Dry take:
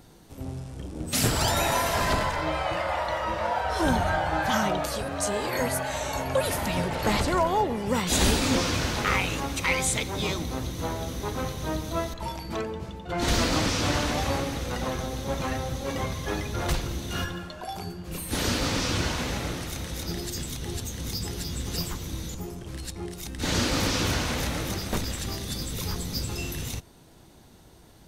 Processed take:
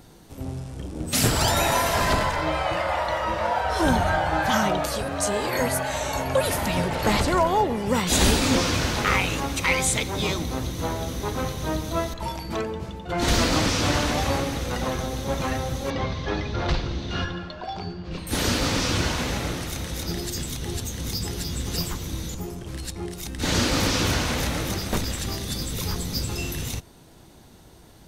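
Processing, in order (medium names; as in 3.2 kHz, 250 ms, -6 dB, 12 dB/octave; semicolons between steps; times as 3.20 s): 15.90–18.27 s: Chebyshev low-pass 4.7 kHz, order 3; trim +3 dB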